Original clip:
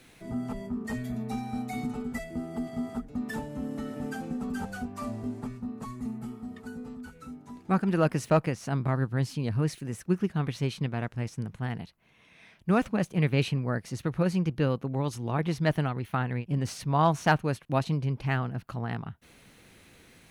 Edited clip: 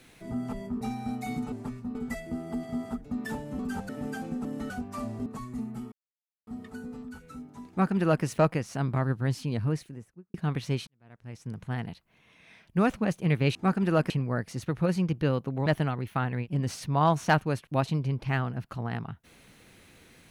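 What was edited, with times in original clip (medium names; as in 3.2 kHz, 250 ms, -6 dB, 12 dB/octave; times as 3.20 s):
0.81–1.28 s: delete
3.63–3.88 s: swap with 4.44–4.74 s
5.30–5.73 s: move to 1.99 s
6.39 s: insert silence 0.55 s
7.61–8.16 s: copy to 13.47 s
9.43–10.26 s: studio fade out
10.79–11.55 s: fade in quadratic
15.03–15.64 s: delete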